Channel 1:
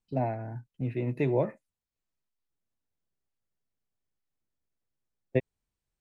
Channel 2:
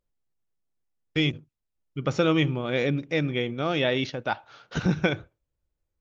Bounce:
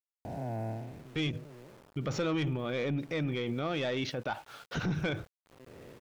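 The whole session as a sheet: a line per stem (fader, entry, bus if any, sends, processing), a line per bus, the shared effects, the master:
+2.0 dB, 0.25 s, no send, spectral blur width 639 ms; auto duck -18 dB, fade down 0.45 s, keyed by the second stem
+2.0 dB, 0.00 s, no send, saturation -18.5 dBFS, distortion -15 dB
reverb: none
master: treble shelf 3.9 kHz -2.5 dB; small samples zeroed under -51.5 dBFS; peak limiter -25.5 dBFS, peak gain reduction 9 dB

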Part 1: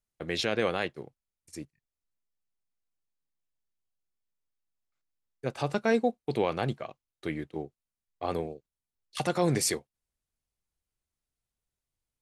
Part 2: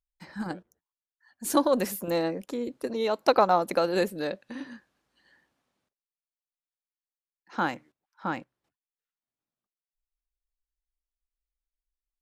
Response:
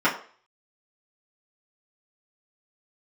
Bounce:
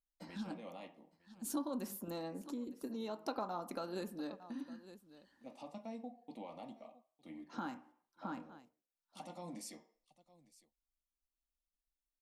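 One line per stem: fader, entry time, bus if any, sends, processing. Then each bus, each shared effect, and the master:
-19.5 dB, 0.00 s, send -14.5 dB, echo send -18.5 dB, static phaser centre 410 Hz, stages 6
-5.0 dB, 0.00 s, send -21.5 dB, echo send -21.5 dB, graphic EQ 125/250/500/2000 Hz -3/+4/-8/-10 dB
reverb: on, RT60 0.45 s, pre-delay 3 ms
echo: delay 908 ms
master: compression 2:1, threshold -46 dBFS, peak gain reduction 14 dB

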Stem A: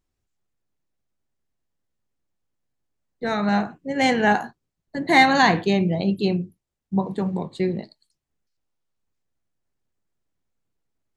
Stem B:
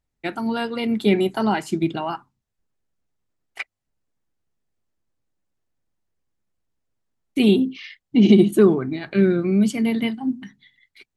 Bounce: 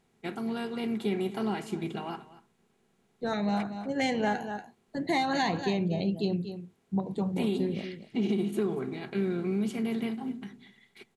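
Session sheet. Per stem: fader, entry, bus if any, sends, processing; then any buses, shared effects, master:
-5.0 dB, 0.00 s, no send, echo send -12.5 dB, LFO notch saw up 3 Hz 980–2500 Hz
-13.5 dB, 0.00 s, no send, echo send -17.5 dB, spectral levelling over time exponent 0.6; comb of notches 300 Hz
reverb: none
echo: delay 236 ms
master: compression 6:1, threshold -24 dBFS, peak gain reduction 8 dB

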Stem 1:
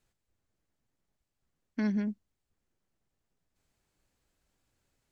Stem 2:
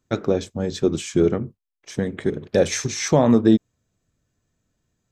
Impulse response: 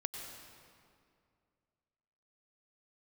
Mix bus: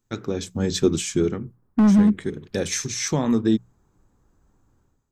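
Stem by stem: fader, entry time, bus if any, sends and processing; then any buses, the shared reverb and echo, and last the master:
+3.0 dB, 0.00 s, no send, low-pass 1.2 kHz 24 dB/octave; level rider gain up to 5 dB; hard clipper -25 dBFS, distortion -12 dB
0.77 s -5.5 dB -> 1.37 s -13.5 dB, 0.00 s, no send, treble shelf 6.5 kHz +8.5 dB; hum notches 60/120/180 Hz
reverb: none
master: peaking EQ 610 Hz -9.5 dB 0.73 oct; level rider gain up to 10 dB

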